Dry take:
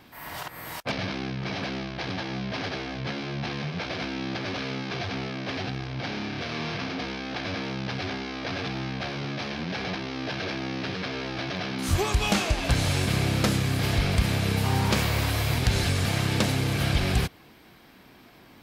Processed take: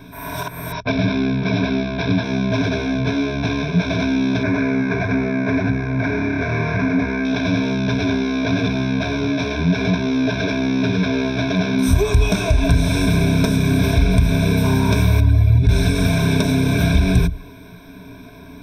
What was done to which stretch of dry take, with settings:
0.72–2.23 s: steep low-pass 5.7 kHz 96 dB/octave
4.43–7.25 s: resonant high shelf 2.5 kHz -6.5 dB, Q 3
15.20–15.69 s: spectral contrast enhancement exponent 1.6
whole clip: rippled EQ curve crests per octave 1.6, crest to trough 18 dB; compression, threshold -23 dBFS; bass shelf 470 Hz +11 dB; trim +3 dB

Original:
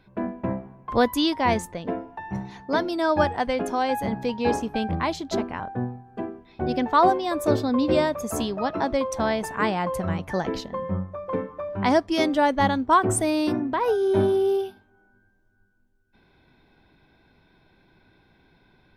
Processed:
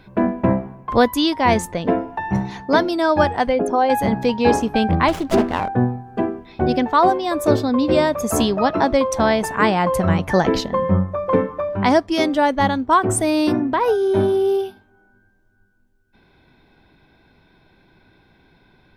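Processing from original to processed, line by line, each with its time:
3.49–3.90 s: resonances exaggerated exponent 1.5
5.08–5.68 s: sliding maximum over 9 samples
whole clip: gain riding within 4 dB 0.5 s; trim +6.5 dB

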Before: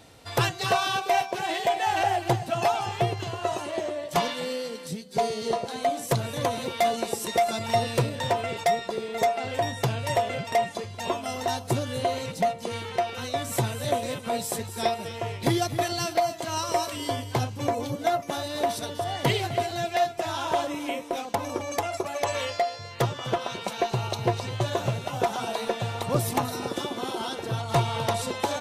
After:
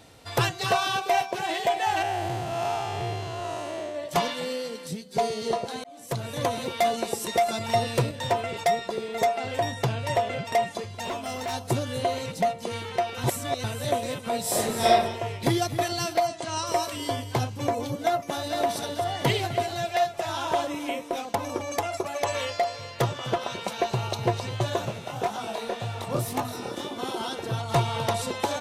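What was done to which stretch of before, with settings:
2.02–3.95 s: spectral blur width 224 ms
5.84–6.41 s: fade in
8.11–8.54 s: three bands expanded up and down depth 40%
9.74–10.46 s: treble shelf 7.4 kHz -6.5 dB
11.04–11.54 s: overload inside the chain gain 27.5 dB
13.24–13.64 s: reverse
14.41–14.90 s: reverb throw, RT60 0.84 s, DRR -6.5 dB
16.27–16.67 s: elliptic low-pass 10 kHz
17.97–18.53 s: echo throw 460 ms, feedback 60%, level -7 dB
19.74–20.29 s: peaking EQ 290 Hz -12.5 dB 0.33 oct
22.18–22.58 s: echo throw 400 ms, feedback 80%, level -14 dB
24.85–26.99 s: chorus 1.9 Hz, delay 18.5 ms, depth 7.6 ms

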